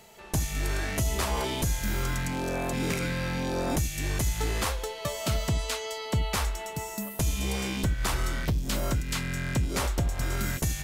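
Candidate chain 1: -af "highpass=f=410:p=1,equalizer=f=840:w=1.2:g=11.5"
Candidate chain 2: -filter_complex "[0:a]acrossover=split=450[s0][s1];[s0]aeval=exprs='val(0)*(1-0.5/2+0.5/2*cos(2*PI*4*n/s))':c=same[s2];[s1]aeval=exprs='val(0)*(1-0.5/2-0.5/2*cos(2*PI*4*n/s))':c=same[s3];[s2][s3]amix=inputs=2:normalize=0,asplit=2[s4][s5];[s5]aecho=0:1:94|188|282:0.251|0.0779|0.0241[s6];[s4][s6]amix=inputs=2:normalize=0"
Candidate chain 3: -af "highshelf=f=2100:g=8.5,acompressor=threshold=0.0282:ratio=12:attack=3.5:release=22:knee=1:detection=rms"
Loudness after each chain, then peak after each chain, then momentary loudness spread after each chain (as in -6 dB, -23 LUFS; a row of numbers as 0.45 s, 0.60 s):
-29.5 LUFS, -32.0 LUFS, -33.0 LUFS; -13.0 dBFS, -16.5 dBFS, -18.5 dBFS; 5 LU, 3 LU, 2 LU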